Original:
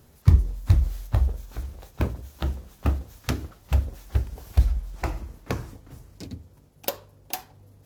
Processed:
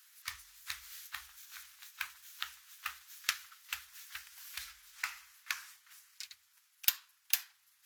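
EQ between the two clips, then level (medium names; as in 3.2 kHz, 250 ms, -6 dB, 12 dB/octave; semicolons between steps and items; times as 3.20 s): inverse Chebyshev high-pass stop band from 570 Hz, stop band 50 dB; +2.0 dB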